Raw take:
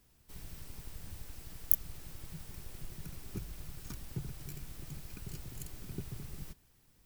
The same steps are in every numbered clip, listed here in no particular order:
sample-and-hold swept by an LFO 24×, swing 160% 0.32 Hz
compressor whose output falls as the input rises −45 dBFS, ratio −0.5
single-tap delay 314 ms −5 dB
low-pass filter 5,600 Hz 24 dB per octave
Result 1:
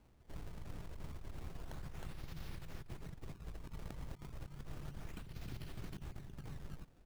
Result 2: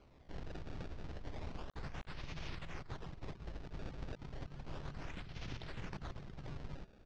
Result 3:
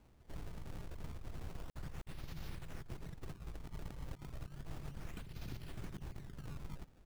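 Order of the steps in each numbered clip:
low-pass filter, then sample-and-hold swept by an LFO, then single-tap delay, then compressor whose output falls as the input rises
single-tap delay, then compressor whose output falls as the input rises, then sample-and-hold swept by an LFO, then low-pass filter
single-tap delay, then compressor whose output falls as the input rises, then low-pass filter, then sample-and-hold swept by an LFO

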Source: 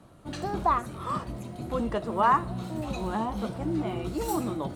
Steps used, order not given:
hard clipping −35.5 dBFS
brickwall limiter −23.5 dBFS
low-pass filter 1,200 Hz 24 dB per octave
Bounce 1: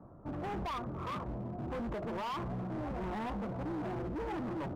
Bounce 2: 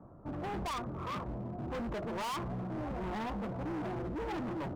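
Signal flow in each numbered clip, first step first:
brickwall limiter, then low-pass filter, then hard clipping
low-pass filter, then hard clipping, then brickwall limiter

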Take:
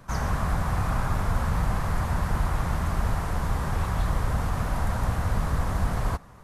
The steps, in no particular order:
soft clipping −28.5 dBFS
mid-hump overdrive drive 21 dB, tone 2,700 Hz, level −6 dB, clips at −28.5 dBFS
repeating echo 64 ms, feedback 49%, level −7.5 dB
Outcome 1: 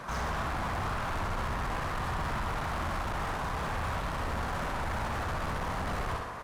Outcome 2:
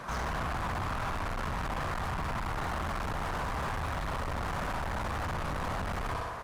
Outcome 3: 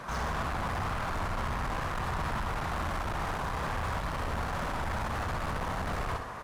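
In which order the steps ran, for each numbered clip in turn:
soft clipping, then repeating echo, then mid-hump overdrive
repeating echo, then soft clipping, then mid-hump overdrive
soft clipping, then mid-hump overdrive, then repeating echo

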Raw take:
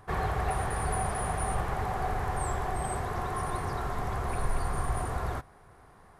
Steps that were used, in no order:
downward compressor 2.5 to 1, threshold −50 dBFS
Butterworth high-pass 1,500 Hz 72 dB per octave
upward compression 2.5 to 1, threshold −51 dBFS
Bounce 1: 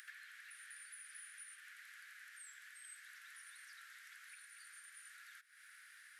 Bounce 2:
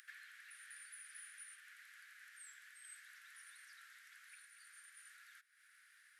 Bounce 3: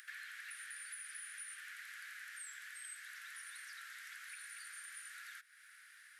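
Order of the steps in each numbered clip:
downward compressor, then Butterworth high-pass, then upward compression
downward compressor, then upward compression, then Butterworth high-pass
Butterworth high-pass, then downward compressor, then upward compression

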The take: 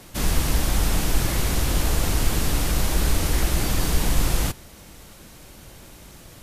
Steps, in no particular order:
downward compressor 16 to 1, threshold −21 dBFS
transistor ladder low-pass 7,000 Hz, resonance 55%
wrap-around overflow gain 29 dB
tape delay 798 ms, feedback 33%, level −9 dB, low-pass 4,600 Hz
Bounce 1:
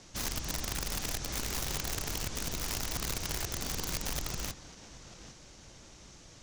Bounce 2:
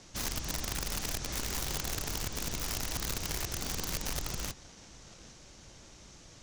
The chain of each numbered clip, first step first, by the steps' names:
downward compressor, then transistor ladder low-pass, then tape delay, then wrap-around overflow
downward compressor, then tape delay, then transistor ladder low-pass, then wrap-around overflow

